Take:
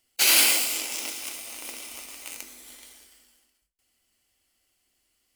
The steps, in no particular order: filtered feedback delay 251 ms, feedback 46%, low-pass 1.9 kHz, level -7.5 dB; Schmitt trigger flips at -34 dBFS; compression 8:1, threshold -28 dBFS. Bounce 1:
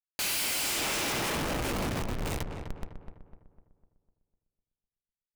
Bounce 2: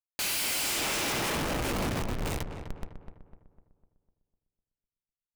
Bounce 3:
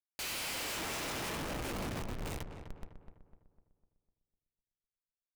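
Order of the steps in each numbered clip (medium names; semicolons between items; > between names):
Schmitt trigger > filtered feedback delay > compression; Schmitt trigger > compression > filtered feedback delay; compression > Schmitt trigger > filtered feedback delay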